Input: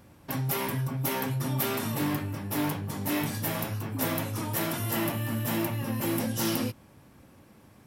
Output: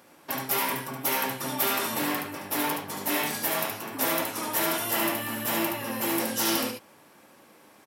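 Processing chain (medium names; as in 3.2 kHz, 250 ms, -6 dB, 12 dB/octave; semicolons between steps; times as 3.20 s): Bessel high-pass 460 Hz, order 2; overload inside the chain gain 22.5 dB; delay 72 ms -4.5 dB; trim +4.5 dB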